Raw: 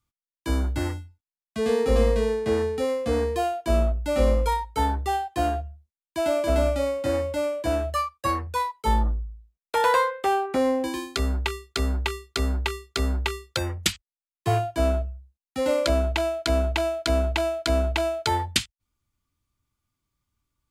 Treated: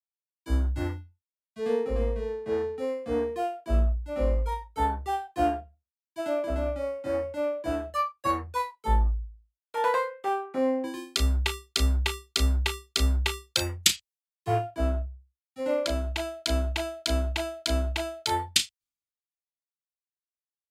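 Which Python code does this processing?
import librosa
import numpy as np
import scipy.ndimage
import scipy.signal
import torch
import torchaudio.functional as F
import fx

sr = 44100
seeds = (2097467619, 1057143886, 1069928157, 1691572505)

y = fx.doubler(x, sr, ms=34.0, db=-10)
y = fx.rider(y, sr, range_db=10, speed_s=0.5)
y = fx.band_widen(y, sr, depth_pct=100)
y = F.gain(torch.from_numpy(y), -5.5).numpy()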